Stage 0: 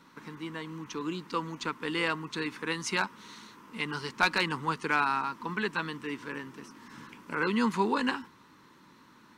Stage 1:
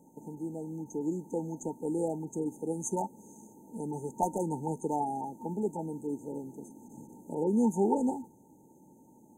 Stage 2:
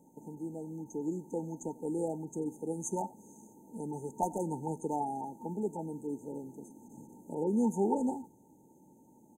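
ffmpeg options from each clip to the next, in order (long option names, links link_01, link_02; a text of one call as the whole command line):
ffmpeg -i in.wav -af "afftfilt=real='re*(1-between(b*sr/4096,920,6200))':imag='im*(1-between(b*sr/4096,920,6200))':win_size=4096:overlap=0.75,lowshelf=frequency=150:gain=-5.5,volume=3.5dB" out.wav
ffmpeg -i in.wav -af "aecho=1:1:91:0.0841,volume=-2.5dB" out.wav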